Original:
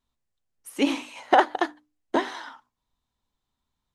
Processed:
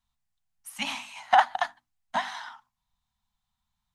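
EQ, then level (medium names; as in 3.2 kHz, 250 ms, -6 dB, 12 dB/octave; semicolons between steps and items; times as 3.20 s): Chebyshev band-stop 210–720 Hz, order 3; 0.0 dB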